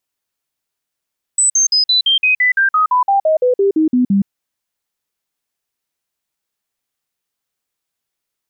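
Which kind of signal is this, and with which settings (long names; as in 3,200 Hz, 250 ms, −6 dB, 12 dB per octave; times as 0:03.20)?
stepped sweep 7,980 Hz down, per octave 3, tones 17, 0.12 s, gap 0.05 s −9.5 dBFS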